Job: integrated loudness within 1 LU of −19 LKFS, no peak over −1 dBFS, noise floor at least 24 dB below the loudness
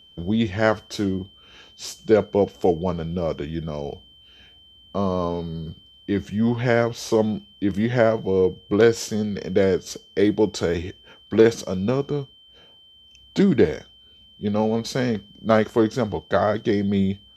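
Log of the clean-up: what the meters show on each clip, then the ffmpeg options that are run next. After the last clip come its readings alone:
interfering tone 3,100 Hz; level of the tone −49 dBFS; integrated loudness −22.5 LKFS; sample peak −2.0 dBFS; target loudness −19.0 LKFS
→ -af "bandreject=frequency=3100:width=30"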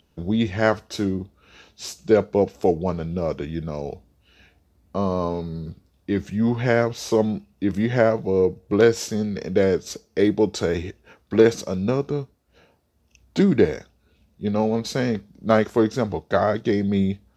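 interfering tone none found; integrated loudness −22.5 LKFS; sample peak −2.0 dBFS; target loudness −19.0 LKFS
→ -af "volume=3.5dB,alimiter=limit=-1dB:level=0:latency=1"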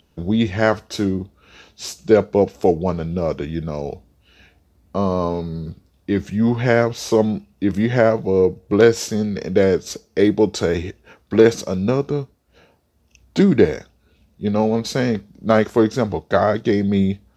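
integrated loudness −19.0 LKFS; sample peak −1.0 dBFS; background noise floor −60 dBFS

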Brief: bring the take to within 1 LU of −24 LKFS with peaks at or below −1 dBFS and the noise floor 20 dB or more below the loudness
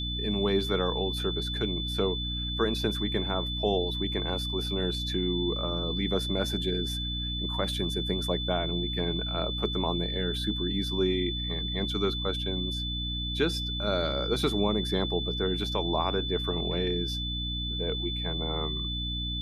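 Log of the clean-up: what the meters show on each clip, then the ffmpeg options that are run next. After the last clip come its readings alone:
mains hum 60 Hz; hum harmonics up to 300 Hz; level of the hum −32 dBFS; interfering tone 3,500 Hz; level of the tone −33 dBFS; integrated loudness −29.0 LKFS; sample peak −13.0 dBFS; target loudness −24.0 LKFS
→ -af "bandreject=frequency=60:width_type=h:width=6,bandreject=frequency=120:width_type=h:width=6,bandreject=frequency=180:width_type=h:width=6,bandreject=frequency=240:width_type=h:width=6,bandreject=frequency=300:width_type=h:width=6"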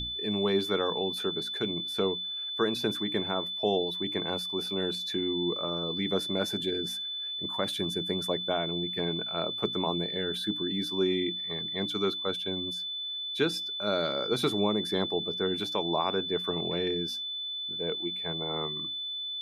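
mains hum none found; interfering tone 3,500 Hz; level of the tone −33 dBFS
→ -af "bandreject=frequency=3500:width=30"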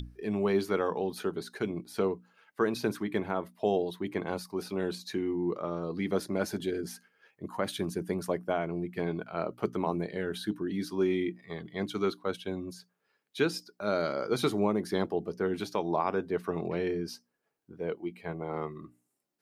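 interfering tone none found; integrated loudness −32.5 LKFS; sample peak −15.5 dBFS; target loudness −24.0 LKFS
→ -af "volume=8.5dB"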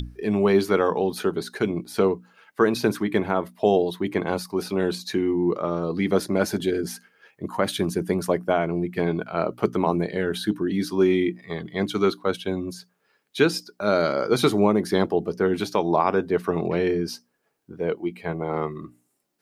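integrated loudness −24.0 LKFS; sample peak −7.0 dBFS; background noise floor −72 dBFS

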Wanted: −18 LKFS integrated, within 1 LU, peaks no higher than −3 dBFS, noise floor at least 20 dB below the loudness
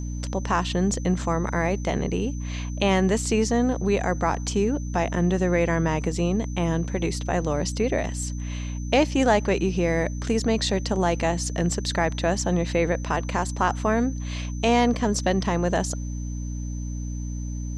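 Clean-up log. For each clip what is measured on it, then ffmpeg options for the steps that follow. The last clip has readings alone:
mains hum 60 Hz; hum harmonics up to 300 Hz; level of the hum −28 dBFS; interfering tone 6,100 Hz; level of the tone −45 dBFS; integrated loudness −24.5 LKFS; sample peak −6.5 dBFS; target loudness −18.0 LKFS
→ -af "bandreject=frequency=60:width_type=h:width=6,bandreject=frequency=120:width_type=h:width=6,bandreject=frequency=180:width_type=h:width=6,bandreject=frequency=240:width_type=h:width=6,bandreject=frequency=300:width_type=h:width=6"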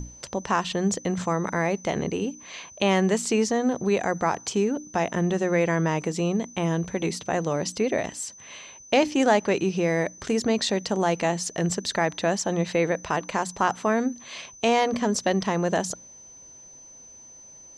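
mains hum none found; interfering tone 6,100 Hz; level of the tone −45 dBFS
→ -af "bandreject=frequency=6100:width=30"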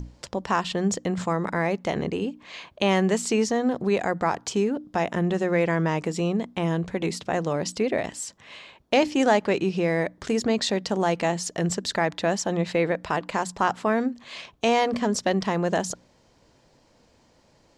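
interfering tone none found; integrated loudness −25.5 LKFS; sample peak −7.0 dBFS; target loudness −18.0 LKFS
→ -af "volume=7.5dB,alimiter=limit=-3dB:level=0:latency=1"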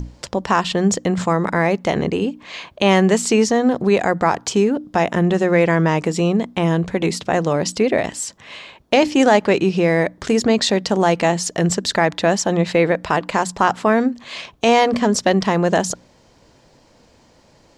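integrated loudness −18.0 LKFS; sample peak −3.0 dBFS; background noise floor −53 dBFS

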